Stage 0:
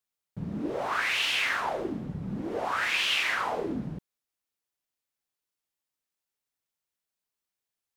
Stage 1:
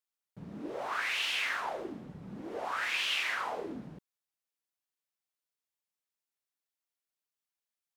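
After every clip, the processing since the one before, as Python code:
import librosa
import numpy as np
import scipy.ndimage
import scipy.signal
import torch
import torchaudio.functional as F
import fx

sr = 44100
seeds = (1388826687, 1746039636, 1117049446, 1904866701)

y = fx.low_shelf(x, sr, hz=210.0, db=-10.5)
y = F.gain(torch.from_numpy(y), -5.0).numpy()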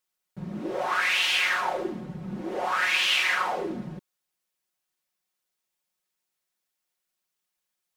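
y = x + 0.65 * np.pad(x, (int(5.5 * sr / 1000.0), 0))[:len(x)]
y = F.gain(torch.from_numpy(y), 7.0).numpy()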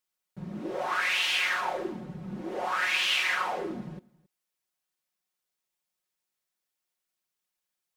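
y = x + 10.0 ** (-24.0 / 20.0) * np.pad(x, (int(271 * sr / 1000.0), 0))[:len(x)]
y = F.gain(torch.from_numpy(y), -3.0).numpy()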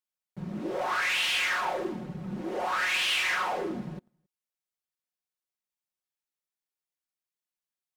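y = fx.leveller(x, sr, passes=2)
y = F.gain(torch.from_numpy(y), -5.5).numpy()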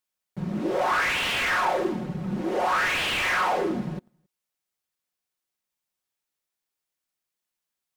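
y = fx.slew_limit(x, sr, full_power_hz=67.0)
y = F.gain(torch.from_numpy(y), 6.5).numpy()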